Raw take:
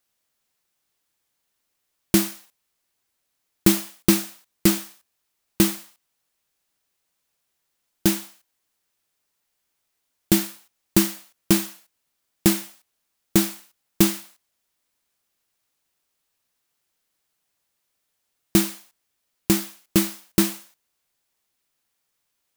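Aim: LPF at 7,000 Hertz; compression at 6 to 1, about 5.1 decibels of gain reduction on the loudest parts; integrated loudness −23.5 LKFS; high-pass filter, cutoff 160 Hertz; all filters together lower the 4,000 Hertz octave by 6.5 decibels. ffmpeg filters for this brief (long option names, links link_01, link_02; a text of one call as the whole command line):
ffmpeg -i in.wav -af "highpass=160,lowpass=7000,equalizer=frequency=4000:width_type=o:gain=-8,acompressor=threshold=-19dB:ratio=6,volume=6.5dB" out.wav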